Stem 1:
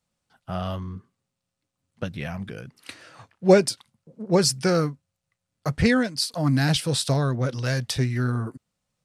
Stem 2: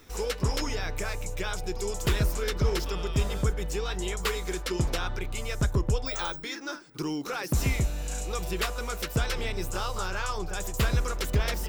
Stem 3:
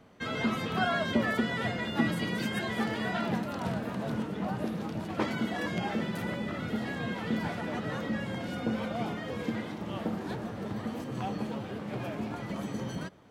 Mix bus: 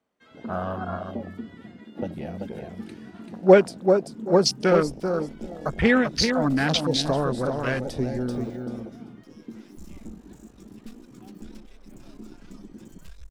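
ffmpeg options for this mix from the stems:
ffmpeg -i stem1.wav -i stem2.wav -i stem3.wav -filter_complex "[0:a]volume=3dB,asplit=2[link_01][link_02];[link_02]volume=-5.5dB[link_03];[1:a]equalizer=frequency=6700:width=0.33:gain=11.5,aeval=exprs='max(val(0),0)':channel_layout=same,adelay=2250,volume=-12dB,afade=type=in:start_time=4.6:duration=0.28:silence=0.266073[link_04];[2:a]highpass=frequency=64:width=0.5412,highpass=frequency=64:width=1.3066,volume=-3dB[link_05];[link_03]aecho=0:1:388|776|1164:1|0.21|0.0441[link_06];[link_01][link_04][link_05][link_06]amix=inputs=4:normalize=0,afwtdn=0.0501,equalizer=frequency=120:width=1.4:gain=-13.5" out.wav

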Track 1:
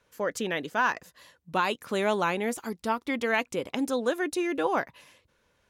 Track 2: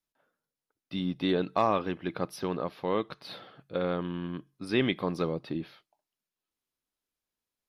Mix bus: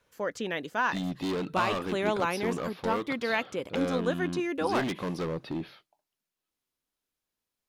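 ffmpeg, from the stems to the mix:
ffmpeg -i stem1.wav -i stem2.wav -filter_complex "[0:a]acrossover=split=6400[link_01][link_02];[link_02]acompressor=threshold=-55dB:ratio=4:attack=1:release=60[link_03];[link_01][link_03]amix=inputs=2:normalize=0,volume=-2.5dB[link_04];[1:a]asoftclip=type=hard:threshold=-30dB,volume=2dB[link_05];[link_04][link_05]amix=inputs=2:normalize=0" out.wav

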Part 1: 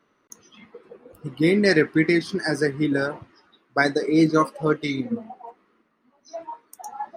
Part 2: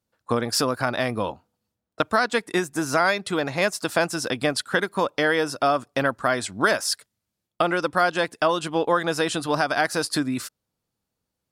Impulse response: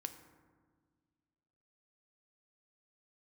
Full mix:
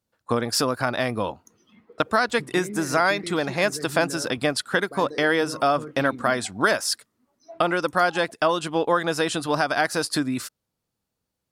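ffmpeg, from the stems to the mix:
-filter_complex "[0:a]lowshelf=frequency=490:gain=7.5,alimiter=limit=-17dB:level=0:latency=1:release=49,adelay=1150,volume=-11dB[link_01];[1:a]volume=0dB[link_02];[link_01][link_02]amix=inputs=2:normalize=0"

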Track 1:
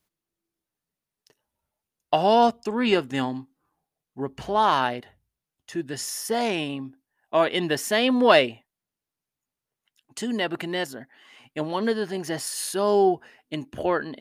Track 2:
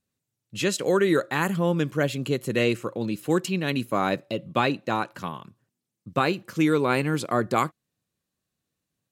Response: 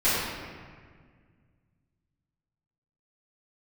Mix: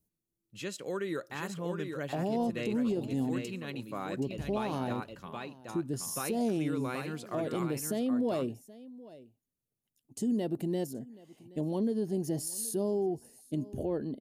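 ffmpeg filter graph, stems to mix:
-filter_complex "[0:a]firequalizer=gain_entry='entry(200,0);entry(1300,-28);entry(5700,-11);entry(11000,-4)':delay=0.05:min_phase=1,acompressor=threshold=-26dB:ratio=6,volume=2dB,asplit=2[link_01][link_02];[link_02]volume=-22dB[link_03];[1:a]volume=-14dB,asplit=2[link_04][link_05];[link_05]volume=-5dB[link_06];[link_03][link_06]amix=inputs=2:normalize=0,aecho=0:1:775:1[link_07];[link_01][link_04][link_07]amix=inputs=3:normalize=0,alimiter=limit=-23.5dB:level=0:latency=1:release=67"

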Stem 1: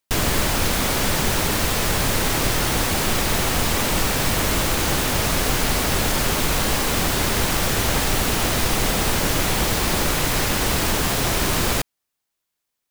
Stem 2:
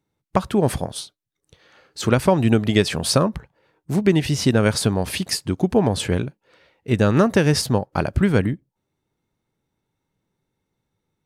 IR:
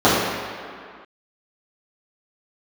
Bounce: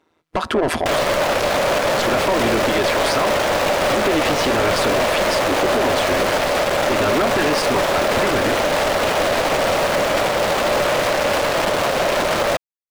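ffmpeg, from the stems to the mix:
-filter_complex "[0:a]equalizer=frequency=580:width_type=o:width=0.51:gain=14.5,acrusher=bits=3:dc=4:mix=0:aa=0.000001,adelay=750,volume=0dB[link_01];[1:a]aecho=1:1:3:0.79,tremolo=f=160:d=0.889,volume=0.5dB[link_02];[link_01][link_02]amix=inputs=2:normalize=0,highshelf=frequency=4400:gain=-5.5,asplit=2[link_03][link_04];[link_04]highpass=frequency=720:poles=1,volume=28dB,asoftclip=type=tanh:threshold=-0.5dB[link_05];[link_03][link_05]amix=inputs=2:normalize=0,lowpass=frequency=2500:poles=1,volume=-6dB,alimiter=limit=-11.5dB:level=0:latency=1:release=101"

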